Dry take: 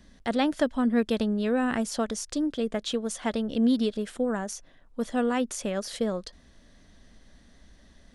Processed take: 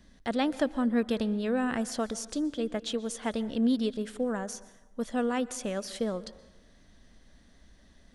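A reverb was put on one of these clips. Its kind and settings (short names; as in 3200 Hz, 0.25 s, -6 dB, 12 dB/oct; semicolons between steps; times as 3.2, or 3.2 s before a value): plate-style reverb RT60 0.97 s, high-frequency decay 0.65×, pre-delay 0.11 s, DRR 17 dB; gain -3 dB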